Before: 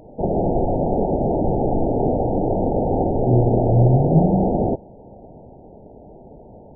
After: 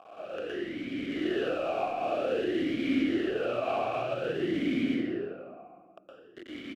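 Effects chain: rattle on loud lows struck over -23 dBFS, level -17 dBFS; delay 72 ms -7.5 dB; saturation -11 dBFS, distortion -17 dB; random-step tremolo 2.2 Hz, depth 85%; companded quantiser 2-bit; level rider gain up to 11 dB; reverberation RT60 1.8 s, pre-delay 113 ms, DRR -7.5 dB; compression, threshold -6 dBFS, peak gain reduction 8 dB; talking filter a-i 0.52 Hz; trim -7.5 dB

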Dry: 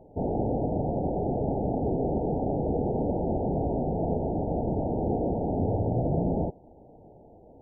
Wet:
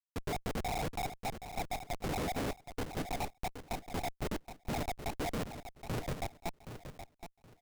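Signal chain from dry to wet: random holes in the spectrogram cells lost 80%; Schmitt trigger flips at -41.5 dBFS; on a send: feedback delay 772 ms, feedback 23%, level -10 dB; on the sum: trim +1 dB

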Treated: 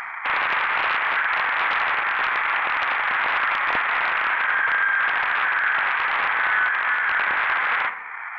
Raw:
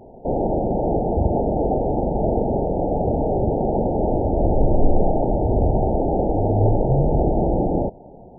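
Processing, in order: peaking EQ 180 Hz +3.5 dB 2.8 oct; in parallel at -3 dB: compression, threshold -32 dBFS, peak gain reduction 21.5 dB; on the sum: peak limiter -11 dBFS, peak gain reduction 8.5 dB; upward compressor, threshold -25 dBFS; saturation -16.5 dBFS, distortion -15 dB; ring modulator 1.6 kHz; on a send: band-passed feedback delay 82 ms, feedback 64%, band-pass 440 Hz, level -11.5 dB; on the sum: Schroeder reverb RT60 0.82 s, combs from 30 ms, DRR 9 dB; loudspeaker Doppler distortion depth 0.57 ms; trim +2 dB

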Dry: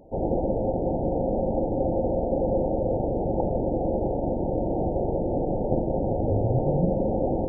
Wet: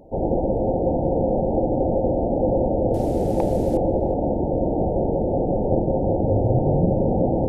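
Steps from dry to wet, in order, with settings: 2.94–3.77 s: one-bit delta coder 64 kbps, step -42 dBFS; filtered feedback delay 368 ms, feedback 69%, low-pass 840 Hz, level -7 dB; trim +3.5 dB

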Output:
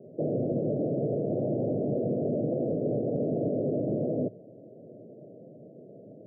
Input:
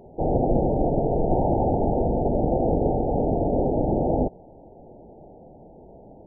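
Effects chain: Chebyshev band-pass 110–630 Hz, order 5; peak limiter -21 dBFS, peak gain reduction 8 dB

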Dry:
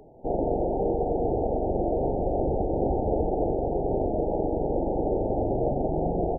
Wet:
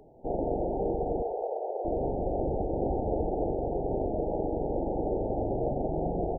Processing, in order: 1.22–1.85 s: steep high-pass 420 Hz 48 dB/octave; filtered feedback delay 107 ms, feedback 31%, level -19 dB; trim -4 dB

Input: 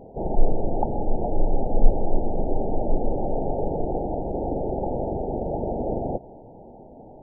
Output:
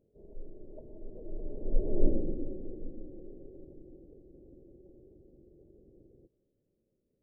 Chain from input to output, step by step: Doppler pass-by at 2.07 s, 18 m/s, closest 2.1 m; formant shift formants -6 st; trim -2 dB

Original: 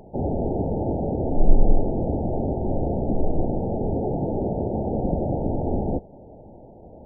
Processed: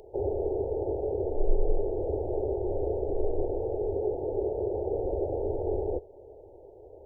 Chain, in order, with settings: FFT filter 100 Hz 0 dB, 160 Hz -20 dB, 240 Hz -18 dB, 400 Hz +12 dB, 700 Hz -1 dB, 1.8 kHz +2 dB, 2.8 kHz +10 dB; gain riding 0.5 s; trim -8.5 dB

